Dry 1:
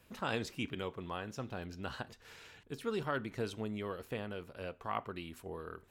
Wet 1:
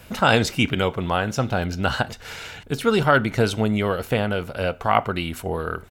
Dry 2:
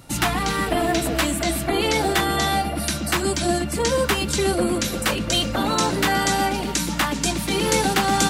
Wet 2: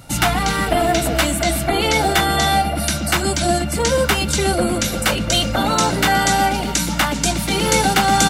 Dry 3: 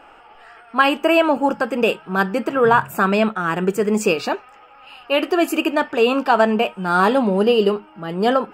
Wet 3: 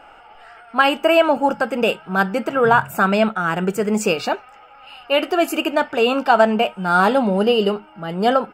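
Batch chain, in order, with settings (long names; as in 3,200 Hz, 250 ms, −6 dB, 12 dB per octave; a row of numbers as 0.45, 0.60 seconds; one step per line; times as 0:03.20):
comb filter 1.4 ms, depth 32%
normalise the peak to −2 dBFS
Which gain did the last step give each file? +18.5, +4.0, 0.0 decibels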